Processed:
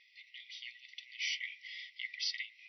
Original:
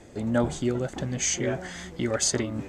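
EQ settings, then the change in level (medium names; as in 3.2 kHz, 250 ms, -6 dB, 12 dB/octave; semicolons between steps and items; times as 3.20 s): brick-wall FIR high-pass 1.9 kHz; brick-wall FIR low-pass 5.9 kHz; distance through air 170 m; +1.5 dB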